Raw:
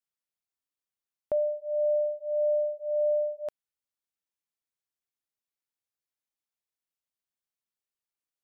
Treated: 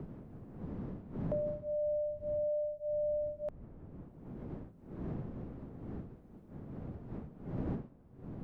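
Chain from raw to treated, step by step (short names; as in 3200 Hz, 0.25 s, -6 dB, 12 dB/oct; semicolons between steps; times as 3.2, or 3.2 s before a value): wind noise 190 Hz -40 dBFS; three-band squash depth 70%; gain -5.5 dB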